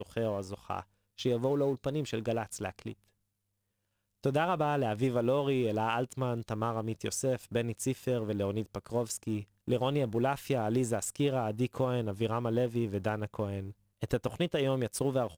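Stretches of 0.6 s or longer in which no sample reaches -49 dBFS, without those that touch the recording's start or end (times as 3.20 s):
3.04–4.24 s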